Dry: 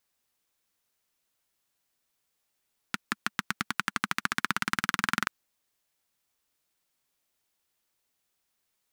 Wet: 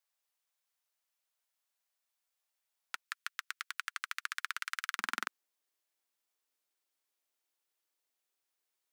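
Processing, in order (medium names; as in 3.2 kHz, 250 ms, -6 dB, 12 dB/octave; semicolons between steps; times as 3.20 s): high-pass 540 Hz 24 dB/octave, from 3.04 s 1.3 kHz, from 4.99 s 290 Hz; trim -7.5 dB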